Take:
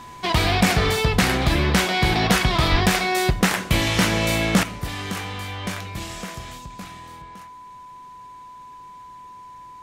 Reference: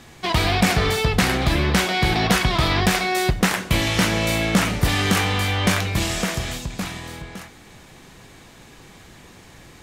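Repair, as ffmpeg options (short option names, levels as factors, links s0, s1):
-filter_complex "[0:a]bandreject=f=1000:w=30,asplit=3[s0][s1][s2];[s0]afade=t=out:st=2.71:d=0.02[s3];[s1]highpass=f=140:w=0.5412,highpass=f=140:w=1.3066,afade=t=in:st=2.71:d=0.02,afade=t=out:st=2.83:d=0.02[s4];[s2]afade=t=in:st=2.83:d=0.02[s5];[s3][s4][s5]amix=inputs=3:normalize=0,asetnsamples=n=441:p=0,asendcmd='4.63 volume volume 10dB',volume=1"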